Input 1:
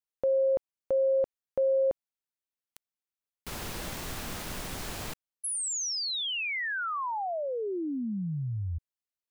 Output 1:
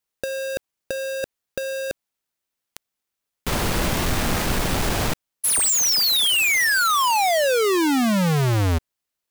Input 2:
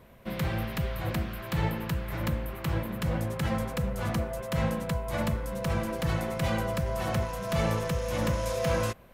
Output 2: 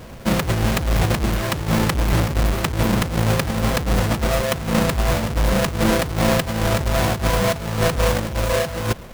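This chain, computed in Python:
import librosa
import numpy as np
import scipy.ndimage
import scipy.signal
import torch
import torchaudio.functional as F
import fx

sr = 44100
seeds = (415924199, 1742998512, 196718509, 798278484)

y = fx.halfwave_hold(x, sr)
y = fx.over_compress(y, sr, threshold_db=-27.0, ratio=-0.5)
y = y * 10.0 ** (8.5 / 20.0)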